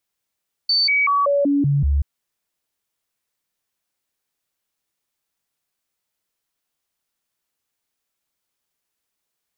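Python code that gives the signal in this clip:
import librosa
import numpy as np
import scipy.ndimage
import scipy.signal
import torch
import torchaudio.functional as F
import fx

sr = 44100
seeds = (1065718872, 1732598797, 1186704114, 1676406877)

y = fx.stepped_sweep(sr, from_hz=4540.0, direction='down', per_octave=1, tones=7, dwell_s=0.19, gap_s=0.0, level_db=-14.5)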